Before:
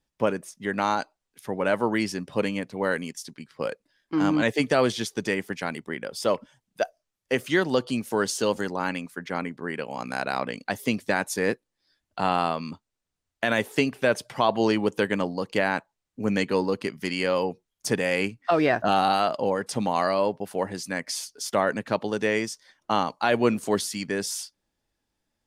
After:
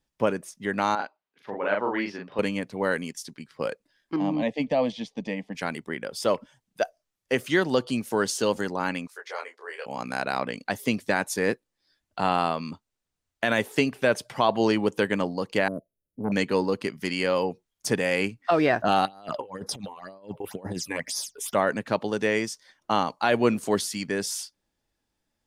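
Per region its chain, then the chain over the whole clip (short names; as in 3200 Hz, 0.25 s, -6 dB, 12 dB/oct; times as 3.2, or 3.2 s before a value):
0.95–2.39 HPF 550 Hz 6 dB/oct + air absorption 280 m + doubler 40 ms -2 dB
4.16–5.55 LPF 2700 Hz + fixed phaser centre 380 Hz, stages 6
9.07–9.86 elliptic high-pass 430 Hz, stop band 60 dB + bell 5400 Hz +6.5 dB 1.1 oct + detuned doubles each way 28 cents
15.68–16.32 brick-wall FIR band-stop 670–9300 Hz + core saturation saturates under 470 Hz
19.05–21.55 phaser stages 8, 2 Hz, lowest notch 180–2800 Hz + negative-ratio compressor -34 dBFS, ratio -0.5 + notch 4400 Hz, Q 7.5
whole clip: dry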